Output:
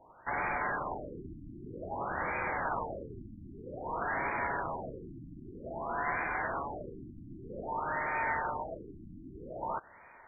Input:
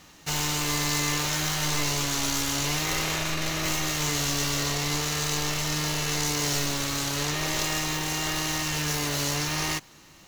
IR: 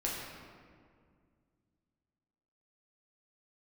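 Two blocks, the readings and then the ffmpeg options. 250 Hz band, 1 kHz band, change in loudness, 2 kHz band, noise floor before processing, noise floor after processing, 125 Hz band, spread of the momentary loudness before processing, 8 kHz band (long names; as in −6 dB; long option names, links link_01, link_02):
−12.5 dB, −1.5 dB, −10.0 dB, −6.0 dB, −52 dBFS, −56 dBFS, −16.5 dB, 2 LU, below −40 dB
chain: -filter_complex "[0:a]crystalizer=i=7:c=0,asplit=2[link_01][link_02];[link_02]volume=17dB,asoftclip=hard,volume=-17dB,volume=-6dB[link_03];[link_01][link_03]amix=inputs=2:normalize=0,lowshelf=frequency=91:gain=6,bandreject=frequency=205.8:width_type=h:width=4,bandreject=frequency=411.6:width_type=h:width=4,bandreject=frequency=617.4:width_type=h:width=4,lowpass=frequency=3100:width_type=q:width=0.5098,lowpass=frequency=3100:width_type=q:width=0.6013,lowpass=frequency=3100:width_type=q:width=0.9,lowpass=frequency=3100:width_type=q:width=2.563,afreqshift=-3700,afftfilt=real='re*lt(b*sr/1024,330*pow(2500/330,0.5+0.5*sin(2*PI*0.52*pts/sr)))':imag='im*lt(b*sr/1024,330*pow(2500/330,0.5+0.5*sin(2*PI*0.52*pts/sr)))':win_size=1024:overlap=0.75,volume=-8dB"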